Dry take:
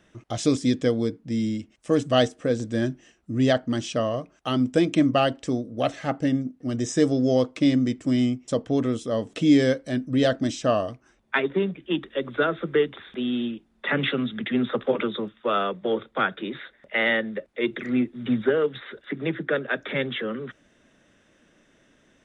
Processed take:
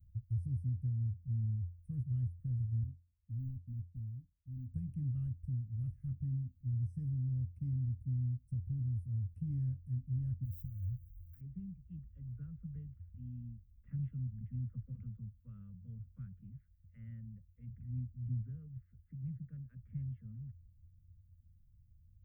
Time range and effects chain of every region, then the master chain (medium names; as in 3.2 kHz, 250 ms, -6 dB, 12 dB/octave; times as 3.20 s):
2.83–4.71 s: cascade formant filter u + waveshaping leveller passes 1
10.44–11.41 s: companding laws mixed up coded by mu + compression 8:1, threshold -30 dBFS
whole clip: inverse Chebyshev band-stop 330–7500 Hz, stop band 60 dB; peaking EQ 87 Hz +13.5 dB 0.22 oct; compression 2.5:1, threshold -43 dBFS; trim +9 dB